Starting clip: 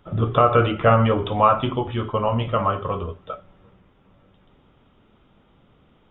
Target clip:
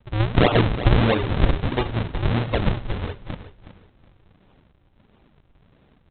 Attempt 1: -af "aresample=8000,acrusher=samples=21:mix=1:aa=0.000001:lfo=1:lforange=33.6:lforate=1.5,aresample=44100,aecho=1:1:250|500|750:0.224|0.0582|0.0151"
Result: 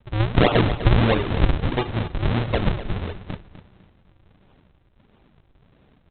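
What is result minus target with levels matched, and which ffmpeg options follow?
echo 118 ms early
-af "aresample=8000,acrusher=samples=21:mix=1:aa=0.000001:lfo=1:lforange=33.6:lforate=1.5,aresample=44100,aecho=1:1:368|736|1104:0.224|0.0582|0.0151"

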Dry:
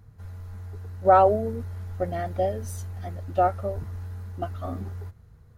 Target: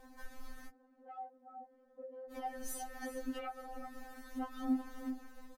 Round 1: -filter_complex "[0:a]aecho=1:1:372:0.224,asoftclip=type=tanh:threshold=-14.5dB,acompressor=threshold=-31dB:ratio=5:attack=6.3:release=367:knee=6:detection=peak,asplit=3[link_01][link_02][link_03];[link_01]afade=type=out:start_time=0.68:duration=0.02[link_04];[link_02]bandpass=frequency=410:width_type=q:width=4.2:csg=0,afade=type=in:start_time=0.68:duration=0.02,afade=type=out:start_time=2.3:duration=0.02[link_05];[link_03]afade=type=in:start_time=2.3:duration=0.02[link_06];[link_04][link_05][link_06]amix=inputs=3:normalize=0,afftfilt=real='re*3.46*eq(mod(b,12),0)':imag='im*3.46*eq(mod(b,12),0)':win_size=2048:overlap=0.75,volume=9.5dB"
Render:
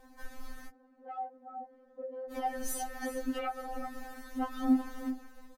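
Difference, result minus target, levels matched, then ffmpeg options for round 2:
downward compressor: peak gain reduction −7.5 dB
-filter_complex "[0:a]aecho=1:1:372:0.224,asoftclip=type=tanh:threshold=-14.5dB,acompressor=threshold=-40.5dB:ratio=5:attack=6.3:release=367:knee=6:detection=peak,asplit=3[link_01][link_02][link_03];[link_01]afade=type=out:start_time=0.68:duration=0.02[link_04];[link_02]bandpass=frequency=410:width_type=q:width=4.2:csg=0,afade=type=in:start_time=0.68:duration=0.02,afade=type=out:start_time=2.3:duration=0.02[link_05];[link_03]afade=type=in:start_time=2.3:duration=0.02[link_06];[link_04][link_05][link_06]amix=inputs=3:normalize=0,afftfilt=real='re*3.46*eq(mod(b,12),0)':imag='im*3.46*eq(mod(b,12),0)':win_size=2048:overlap=0.75,volume=9.5dB"

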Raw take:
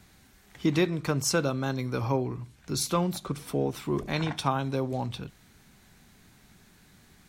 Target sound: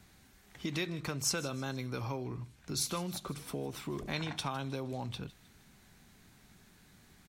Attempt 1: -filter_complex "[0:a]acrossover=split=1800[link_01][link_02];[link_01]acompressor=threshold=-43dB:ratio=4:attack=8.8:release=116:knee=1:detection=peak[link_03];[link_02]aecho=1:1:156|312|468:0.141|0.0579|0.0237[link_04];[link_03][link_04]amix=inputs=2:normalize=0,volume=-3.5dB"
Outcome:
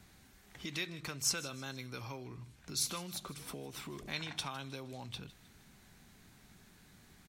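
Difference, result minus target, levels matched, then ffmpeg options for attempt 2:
downward compressor: peak gain reduction +8 dB
-filter_complex "[0:a]acrossover=split=1800[link_01][link_02];[link_01]acompressor=threshold=-32.5dB:ratio=4:attack=8.8:release=116:knee=1:detection=peak[link_03];[link_02]aecho=1:1:156|312|468:0.141|0.0579|0.0237[link_04];[link_03][link_04]amix=inputs=2:normalize=0,volume=-3.5dB"

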